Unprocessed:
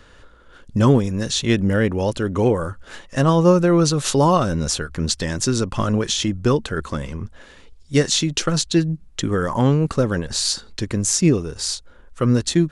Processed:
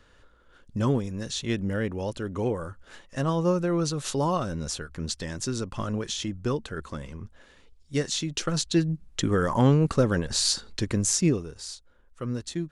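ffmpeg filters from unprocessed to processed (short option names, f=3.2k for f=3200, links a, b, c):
-af "volume=-3dB,afade=t=in:st=8.2:d=1.03:silence=0.446684,afade=t=out:st=10.91:d=0.73:silence=0.281838"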